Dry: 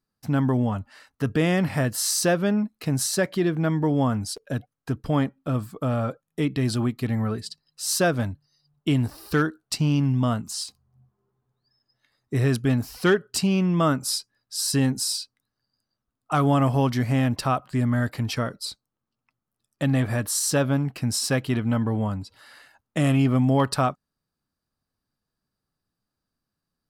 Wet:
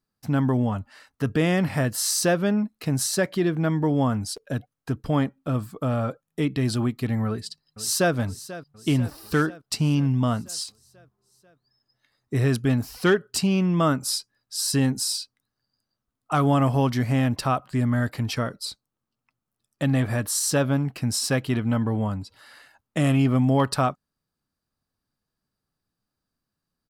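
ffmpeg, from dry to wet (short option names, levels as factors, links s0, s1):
-filter_complex "[0:a]asplit=2[s0][s1];[s1]afade=t=in:st=7.27:d=0.01,afade=t=out:st=8.14:d=0.01,aecho=0:1:490|980|1470|1960|2450|2940|3430:0.16788|0.109122|0.0709295|0.0461042|0.0299677|0.019479|0.0126614[s2];[s0][s2]amix=inputs=2:normalize=0"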